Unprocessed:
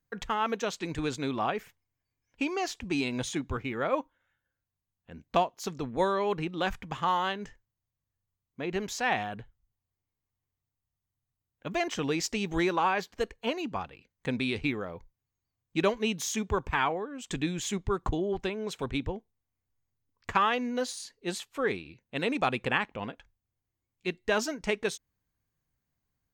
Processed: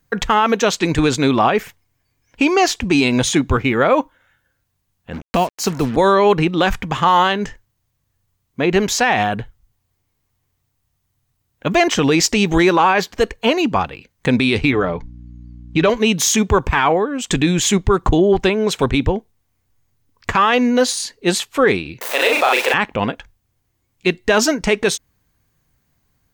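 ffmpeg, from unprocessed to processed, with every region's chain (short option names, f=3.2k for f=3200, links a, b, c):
-filter_complex "[0:a]asettb=1/sr,asplit=3[a][b][c];[a]atrim=end=5.134[d];[b]atrim=start=5.13:end=5.96,asetpts=PTS-STARTPTS,afade=t=in:d=0.004:c=qsin,afade=t=out:st=0.826:d=0.004:c=qsin,bandreject=f=3.5k:w=5.4,acrossover=split=330|3000[e][f][g];[f]acompressor=threshold=-41dB:ratio=1.5:attack=3.2:release=140:knee=2.83:detection=peak[h];[e][h][g]amix=inputs=3:normalize=0,acrusher=bits=7:mix=0:aa=0.5[i];[c]atrim=start=5.956[j];[d][i]acrossfade=d=0.004:c1=hsin:c2=qsin[k];[k][j]acrossfade=d=0.004:c1=qsin:c2=hsin,asettb=1/sr,asplit=3[l][m][n];[l]atrim=end=14.714[o];[m]atrim=start=14.71:end=15.9,asetpts=PTS-STARTPTS,afade=t=in:d=0.004:c=qsin,afade=t=out:st=1.186:d=0.004:c=qsin,lowpass=5.2k,aecho=1:1:6.8:0.58,atrim=end_sample=52479,aeval=exprs='val(0)+0.00224*(sin(2*PI*60*n/s)+sin(2*PI*2*60*n/s)/2+sin(2*PI*3*60*n/s)/3+sin(2*PI*4*60*n/s)/4+sin(2*PI*5*60*n/s)/5)':c=same[p];[n]atrim=start=15.896[q];[o][p]acrossfade=d=0.004:c1=hsin:c2=qsin[r];[r][q]acrossfade=d=0.004:c1=qsin:c2=hsin,asettb=1/sr,asplit=3[s][t][u];[s]atrim=end=22.014[v];[t]atrim=start=22.01:end=22.74,asetpts=PTS-STARTPTS,afade=t=in:d=0.004:c=qsin,afade=t=out:st=0.726:d=0.004:c=qsin,aeval=exprs='val(0)+0.5*0.0188*sgn(val(0))':c=same,highpass=f=460:w=0.5412,highpass=f=460:w=1.3066,asplit=2[w][x];[x]adelay=38,volume=-3dB[y];[w][y]amix=inputs=2:normalize=0,atrim=end_sample=32193[z];[u]atrim=start=22.736[aa];[v][z]acrossfade=d=0.004:c1=hsin:c2=qsin[ab];[ab][aa]acrossfade=d=0.004:c1=qsin:c2=hsin,acontrast=72,alimiter=level_in=14.5dB:limit=-1dB:release=50:level=0:latency=1,volume=-4dB"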